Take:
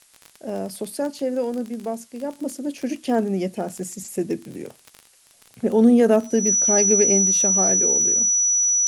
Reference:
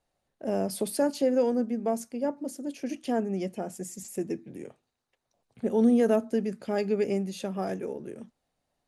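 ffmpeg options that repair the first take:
-af "adeclick=t=4,bandreject=f=5.9k:w=30,agate=range=-21dB:threshold=-45dB,asetnsamples=n=441:p=0,asendcmd='2.39 volume volume -7dB',volume=0dB"

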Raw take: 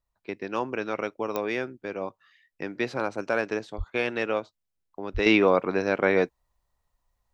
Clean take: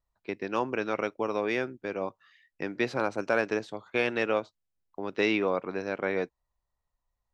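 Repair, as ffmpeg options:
-filter_complex "[0:a]adeclick=t=4,asplit=3[a][b][c];[a]afade=t=out:st=3.77:d=0.02[d];[b]highpass=f=140:w=0.5412,highpass=f=140:w=1.3066,afade=t=in:st=3.77:d=0.02,afade=t=out:st=3.89:d=0.02[e];[c]afade=t=in:st=3.89:d=0.02[f];[d][e][f]amix=inputs=3:normalize=0,asplit=3[g][h][i];[g]afade=t=out:st=5.13:d=0.02[j];[h]highpass=f=140:w=0.5412,highpass=f=140:w=1.3066,afade=t=in:st=5.13:d=0.02,afade=t=out:st=5.25:d=0.02[k];[i]afade=t=in:st=5.25:d=0.02[l];[j][k][l]amix=inputs=3:normalize=0,asetnsamples=n=441:p=0,asendcmd='5.26 volume volume -7.5dB',volume=0dB"

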